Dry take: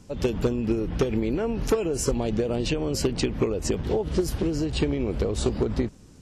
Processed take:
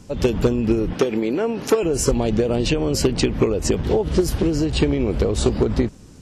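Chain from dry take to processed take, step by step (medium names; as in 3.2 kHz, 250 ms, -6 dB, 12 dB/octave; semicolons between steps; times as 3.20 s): 0.93–1.83 s: high-pass 230 Hz 12 dB/octave; trim +6 dB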